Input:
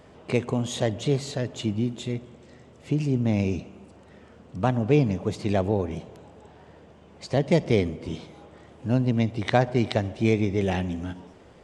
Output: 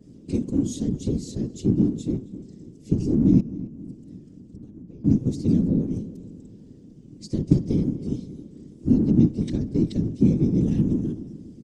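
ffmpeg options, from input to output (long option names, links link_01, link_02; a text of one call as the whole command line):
ffmpeg -i in.wav -filter_complex "[0:a]acrossover=split=160[link_01][link_02];[link_02]acompressor=threshold=-23dB:ratio=6[link_03];[link_01][link_03]amix=inputs=2:normalize=0,firequalizer=gain_entry='entry(130,0);entry(200,15);entry(680,-26);entry(5200,3)':delay=0.05:min_phase=1,asettb=1/sr,asplit=3[link_04][link_05][link_06];[link_04]atrim=end=3.404[link_07];[link_05]atrim=start=3.4:end=5.05,asetpts=PTS-STARTPTS,afade=type=in:duration=0.004:curve=qsin,afade=type=out:start_time=1.646:duration=0.004:curve=qsin,acompressor=threshold=-40dB:ratio=6[link_08];[link_06]atrim=start=5.046[link_09];[link_07][link_08]acrossfade=duration=0.004:curve1=hsin:curve2=qsin[link_10];[link_10][link_09]acrossfade=duration=0.004:curve1=qsin:curve2=hsin,afftfilt=real='hypot(re,im)*cos(2*PI*random(0))':imag='hypot(re,im)*sin(2*PI*random(1))':win_size=512:overlap=0.75,asplit=2[link_11][link_12];[link_12]adelay=268,lowpass=frequency=2100:poles=1,volume=-16.5dB,asplit=2[link_13][link_14];[link_14]adelay=268,lowpass=frequency=2100:poles=1,volume=0.51,asplit=2[link_15][link_16];[link_16]adelay=268,lowpass=frequency=2100:poles=1,volume=0.51,asplit=2[link_17][link_18];[link_18]adelay=268,lowpass=frequency=2100:poles=1,volume=0.51,asplit=2[link_19][link_20];[link_20]adelay=268,lowpass=frequency=2100:poles=1,volume=0.51[link_21];[link_11][link_13][link_15][link_17][link_19][link_21]amix=inputs=6:normalize=0,adynamicequalizer=threshold=0.00158:dfrequency=2500:dqfactor=0.7:tfrequency=2500:tqfactor=0.7:attack=5:release=100:ratio=0.375:range=1.5:mode=cutabove:tftype=highshelf,volume=3.5dB" out.wav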